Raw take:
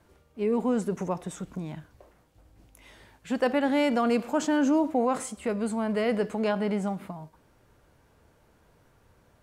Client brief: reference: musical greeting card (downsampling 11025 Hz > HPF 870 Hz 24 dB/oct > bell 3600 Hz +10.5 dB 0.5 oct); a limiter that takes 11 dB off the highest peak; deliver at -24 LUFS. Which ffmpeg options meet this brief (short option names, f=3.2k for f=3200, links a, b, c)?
-af "alimiter=level_in=1.5dB:limit=-24dB:level=0:latency=1,volume=-1.5dB,aresample=11025,aresample=44100,highpass=f=870:w=0.5412,highpass=f=870:w=1.3066,equalizer=f=3.6k:t=o:w=0.5:g=10.5,volume=19.5dB"